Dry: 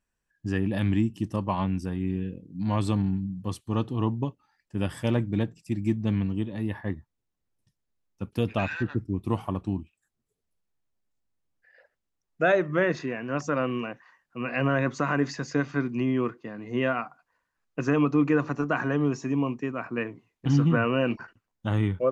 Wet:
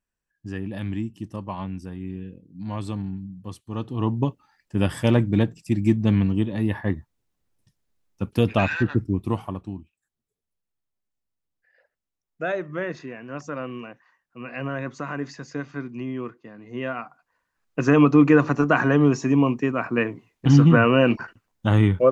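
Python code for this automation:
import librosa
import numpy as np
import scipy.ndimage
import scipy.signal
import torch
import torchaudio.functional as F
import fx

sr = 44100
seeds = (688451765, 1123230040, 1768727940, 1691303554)

y = fx.gain(x, sr, db=fx.line((3.71, -4.5), (4.25, 6.5), (9.06, 6.5), (9.74, -5.0), (16.7, -5.0), (18.0, 7.5)))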